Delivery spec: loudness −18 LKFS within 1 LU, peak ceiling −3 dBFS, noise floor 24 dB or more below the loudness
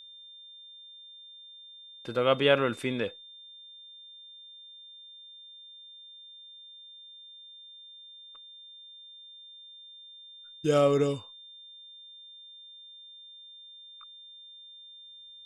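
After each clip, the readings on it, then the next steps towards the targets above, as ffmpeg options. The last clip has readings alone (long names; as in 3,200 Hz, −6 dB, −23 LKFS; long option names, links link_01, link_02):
interfering tone 3,600 Hz; level of the tone −47 dBFS; integrated loudness −27.0 LKFS; sample peak −8.5 dBFS; target loudness −18.0 LKFS
→ -af "bandreject=frequency=3600:width=30"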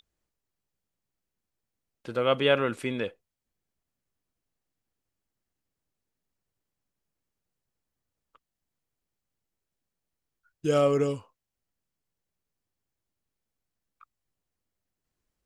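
interfering tone none found; integrated loudness −27.0 LKFS; sample peak −8.5 dBFS; target loudness −18.0 LKFS
→ -af "volume=9dB,alimiter=limit=-3dB:level=0:latency=1"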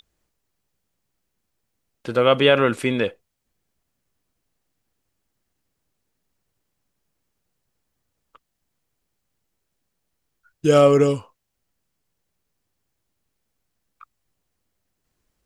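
integrated loudness −18.5 LKFS; sample peak −3.0 dBFS; background noise floor −77 dBFS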